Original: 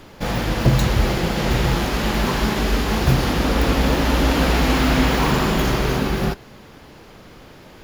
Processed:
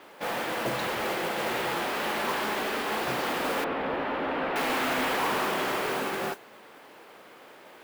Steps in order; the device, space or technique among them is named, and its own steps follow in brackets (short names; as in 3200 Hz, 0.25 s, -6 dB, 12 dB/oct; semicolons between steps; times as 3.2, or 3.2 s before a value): carbon microphone (BPF 450–3100 Hz; soft clip -18.5 dBFS, distortion -17 dB; modulation noise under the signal 14 dB); 3.64–4.56 air absorption 410 m; gain -2.5 dB